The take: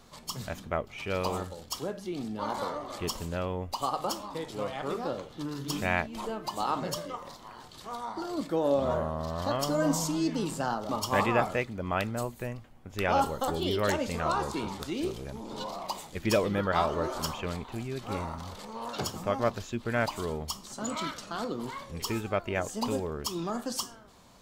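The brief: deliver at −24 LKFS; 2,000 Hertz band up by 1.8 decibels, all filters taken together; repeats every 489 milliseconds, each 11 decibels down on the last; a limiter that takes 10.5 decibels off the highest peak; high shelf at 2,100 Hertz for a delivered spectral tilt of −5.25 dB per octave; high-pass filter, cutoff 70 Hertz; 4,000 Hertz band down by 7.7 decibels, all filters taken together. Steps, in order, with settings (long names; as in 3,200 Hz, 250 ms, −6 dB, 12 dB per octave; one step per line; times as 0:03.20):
high-pass filter 70 Hz
parametric band 2,000 Hz +7 dB
high-shelf EQ 2,100 Hz −5.5 dB
parametric band 4,000 Hz −7.5 dB
brickwall limiter −20.5 dBFS
repeating echo 489 ms, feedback 28%, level −11 dB
level +10 dB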